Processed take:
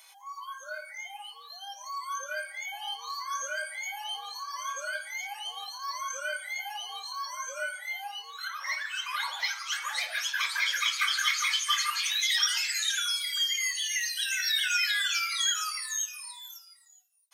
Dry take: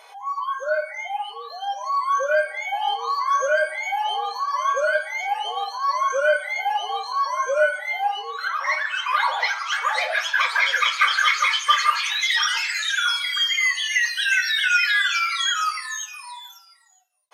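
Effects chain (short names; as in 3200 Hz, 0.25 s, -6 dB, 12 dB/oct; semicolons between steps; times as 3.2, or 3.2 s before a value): 13.02–14.4 bell 970 Hz -5.5 dB 2.6 oct; HPF 490 Hz; differentiator; gain +2 dB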